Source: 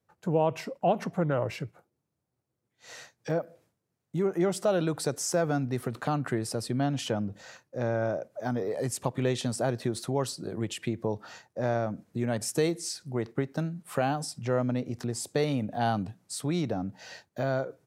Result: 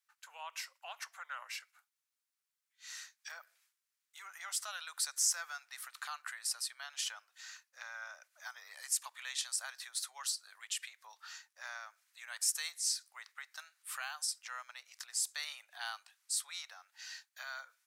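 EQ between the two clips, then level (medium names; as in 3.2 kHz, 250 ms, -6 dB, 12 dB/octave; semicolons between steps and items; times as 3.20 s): Bessel high-pass 2 kHz, order 6; dynamic bell 2.7 kHz, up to -5 dB, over -56 dBFS, Q 1.2; +3.0 dB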